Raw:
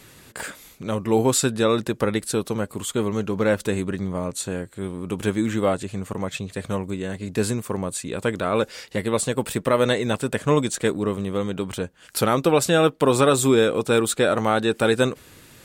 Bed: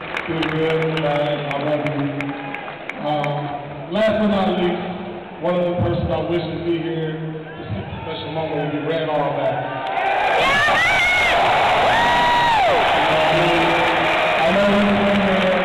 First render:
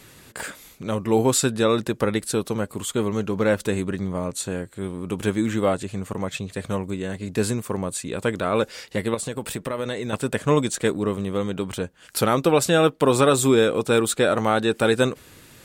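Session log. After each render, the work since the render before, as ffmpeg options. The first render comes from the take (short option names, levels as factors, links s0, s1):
-filter_complex "[0:a]asettb=1/sr,asplit=3[s0][s1][s2];[s0]atrim=end=9.144[s3];[s1]atrim=start=9.14:end=10.13,asetpts=PTS-STARTPTS,afade=t=in:d=0.004:c=qsin,afade=t=out:st=0.986:d=0.004:c=qsin,acompressor=threshold=0.0501:ratio=3:attack=3.2:release=140:knee=1:detection=peak[s4];[s2]atrim=start=10.126[s5];[s3][s4]acrossfade=d=0.004:c1=hsin:c2=qsin[s6];[s6][s5]acrossfade=d=0.004:c1=qsin:c2=hsin"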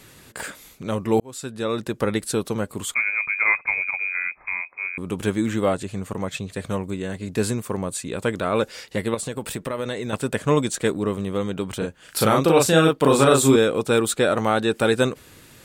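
-filter_complex "[0:a]asettb=1/sr,asplit=3[s0][s1][s2];[s0]atrim=end=2.944[s3];[s1]atrim=start=2.94:end=4.98,asetpts=PTS-STARTPTS,afade=t=in:d=0.004:c=qsin,afade=t=out:st=2.036:d=0.004:c=qsin,lowpass=f=2200:t=q:w=0.5098,lowpass=f=2200:t=q:w=0.6013,lowpass=f=2200:t=q:w=0.9,lowpass=f=2200:t=q:w=2.563,afreqshift=-2600[s4];[s2]atrim=start=4.976[s5];[s3][s4]acrossfade=d=0.004:c1=hsin:c2=qsin[s6];[s6][s5]acrossfade=d=0.004:c1=qsin:c2=hsin,asettb=1/sr,asplit=3[s7][s8][s9];[s7]atrim=end=11.784[s10];[s8]atrim=start=11.78:end=13.56,asetpts=PTS-STARTPTS,afade=t=in:d=0.004:c=qsin,afade=t=out:st=1.776:d=0.004:c=qsin,asplit=2[s11][s12];[s12]adelay=37,volume=0.794[s13];[s11][s13]amix=inputs=2:normalize=0,atrim=end_sample=78498[s14];[s9]atrim=start=13.556[s15];[s10][s14]acrossfade=d=0.004:c1=hsin:c2=qsin[s16];[s16][s15]acrossfade=d=0.004:c1=qsin:c2=hsin,asplit=2[s17][s18];[s17]atrim=end=1.2,asetpts=PTS-STARTPTS,afade=t=out:st=1.196:d=0.004:c=hsin[s19];[s18]atrim=start=1.2,asetpts=PTS-STARTPTS,afade=t=in:d=0.91[s20];[s19][s20]concat=n=2:v=0:a=1"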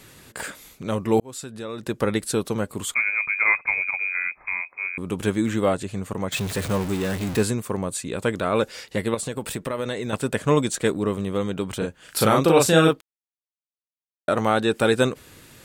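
-filter_complex "[0:a]asettb=1/sr,asplit=3[s0][s1][s2];[s0]atrim=end=1.414[s3];[s1]atrim=start=1.41:end=1.83,asetpts=PTS-STARTPTS,afade=t=in:d=0.004:c=qsin,afade=t=out:st=0.416:d=0.004:c=qsin,acompressor=threshold=0.0178:ratio=2:attack=3.2:release=140:knee=1:detection=peak[s4];[s2]atrim=start=1.826[s5];[s3][s4]acrossfade=d=0.004:c1=hsin:c2=qsin[s6];[s6][s5]acrossfade=d=0.004:c1=qsin:c2=hsin,asettb=1/sr,asplit=3[s7][s8][s9];[s7]atrim=end=6.324[s10];[s8]atrim=start=6.32:end=7.43,asetpts=PTS-STARTPTS,afade=t=in:d=0.004:c=qsin,afade=t=out:st=1.106:d=0.004:c=qsin,aeval=exprs='val(0)+0.5*0.0473*sgn(val(0))':c=same[s11];[s9]atrim=start=7.426[s12];[s10][s11]acrossfade=d=0.004:c1=hsin:c2=qsin[s13];[s13][s12]acrossfade=d=0.004:c1=qsin:c2=hsin,asplit=3[s14][s15][s16];[s14]atrim=end=13.01,asetpts=PTS-STARTPTS,afade=t=out:st=13.006:d=0.004:c=hsin[s17];[s15]atrim=start=13.01:end=14.28,asetpts=PTS-STARTPTS,volume=0[s18];[s16]atrim=start=14.28,asetpts=PTS-STARTPTS,afade=t=in:d=0.004:c=hsin[s19];[s17][s18][s19]concat=n=3:v=0:a=1"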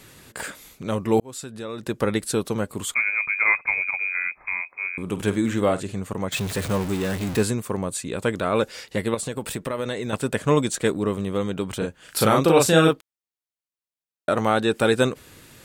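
-filter_complex "[0:a]asettb=1/sr,asplit=3[s0][s1][s2];[s0]atrim=end=4.904[s3];[s1]atrim=start=4.9:end=5.94,asetpts=PTS-STARTPTS,afade=t=in:d=0.004:c=qsin,afade=t=out:st=1.036:d=0.004:c=qsin,asplit=2[s4][s5];[s5]adelay=49,volume=0.224[s6];[s4][s6]amix=inputs=2:normalize=0,atrim=end_sample=45864[s7];[s2]atrim=start=5.936[s8];[s3][s7]acrossfade=d=0.004:c1=hsin:c2=qsin[s9];[s9][s8]acrossfade=d=0.004:c1=qsin:c2=hsin"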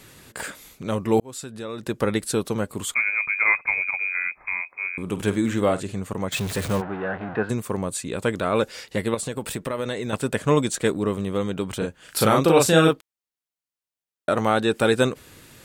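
-filter_complex "[0:a]asplit=3[s0][s1][s2];[s0]afade=t=out:st=6.8:d=0.02[s3];[s1]highpass=170,equalizer=f=190:t=q:w=4:g=-4,equalizer=f=270:t=q:w=4:g=-7,equalizer=f=400:t=q:w=4:g=-4,equalizer=f=730:t=q:w=4:g=8,equalizer=f=1500:t=q:w=4:g=7,equalizer=f=2200:t=q:w=4:g=-6,lowpass=f=2200:w=0.5412,lowpass=f=2200:w=1.3066,afade=t=in:st=6.8:d=0.02,afade=t=out:st=7.49:d=0.02[s4];[s2]afade=t=in:st=7.49:d=0.02[s5];[s3][s4][s5]amix=inputs=3:normalize=0"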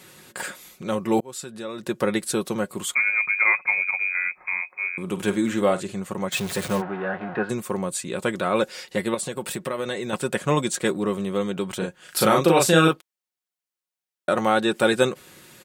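-af "highpass=f=170:p=1,aecho=1:1:5.5:0.46"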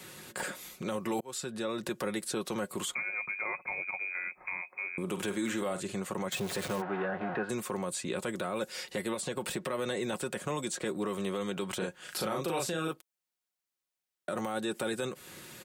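-filter_complex "[0:a]acrossover=split=280|850|6900[s0][s1][s2][s3];[s0]acompressor=threshold=0.01:ratio=4[s4];[s1]acompressor=threshold=0.0224:ratio=4[s5];[s2]acompressor=threshold=0.0141:ratio=4[s6];[s3]acompressor=threshold=0.00631:ratio=4[s7];[s4][s5][s6][s7]amix=inputs=4:normalize=0,alimiter=limit=0.0631:level=0:latency=1:release=20"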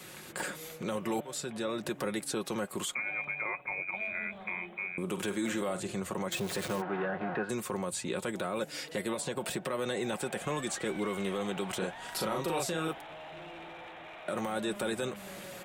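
-filter_complex "[1:a]volume=0.0316[s0];[0:a][s0]amix=inputs=2:normalize=0"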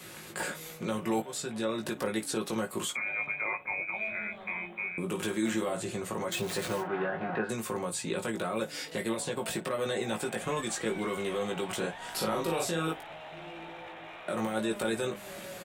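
-af "aecho=1:1:18|55:0.631|0.133"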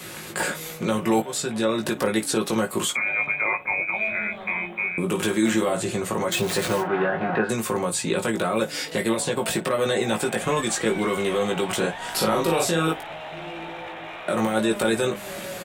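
-af "volume=2.82"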